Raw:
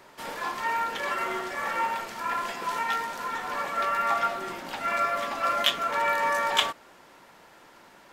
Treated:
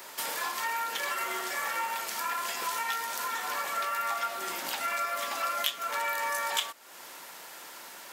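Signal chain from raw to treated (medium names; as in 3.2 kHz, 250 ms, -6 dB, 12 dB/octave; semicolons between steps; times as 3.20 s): RIAA curve recording; compression 3:1, threshold -37 dBFS, peak gain reduction 18 dB; trim +4.5 dB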